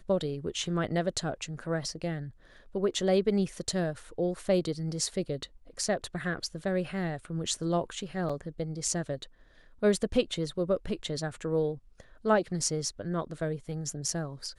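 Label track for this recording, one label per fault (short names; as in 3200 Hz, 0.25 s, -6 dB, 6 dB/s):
8.290000	8.300000	gap 5.4 ms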